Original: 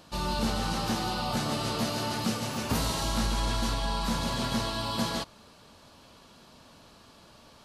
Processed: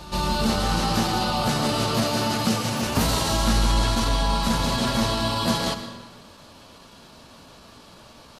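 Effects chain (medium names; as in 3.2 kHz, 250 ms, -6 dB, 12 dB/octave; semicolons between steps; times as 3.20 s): tempo 0.91×; pre-echo 164 ms -16 dB; algorithmic reverb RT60 1.3 s, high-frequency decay 0.85×, pre-delay 55 ms, DRR 9.5 dB; trim +6.5 dB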